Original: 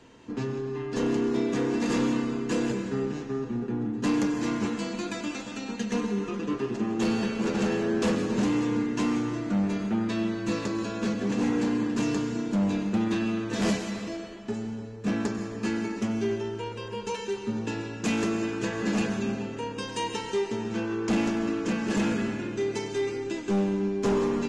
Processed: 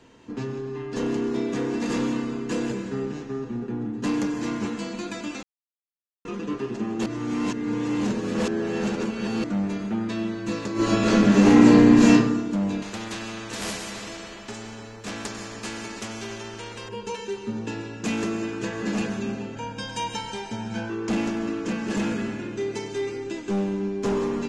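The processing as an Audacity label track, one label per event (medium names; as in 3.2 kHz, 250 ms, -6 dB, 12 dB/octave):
5.430000	6.250000	mute
7.060000	9.440000	reverse
10.730000	12.110000	reverb throw, RT60 0.91 s, DRR -12 dB
12.820000	16.890000	spectrum-flattening compressor 2:1
19.550000	20.900000	comb 1.3 ms, depth 72%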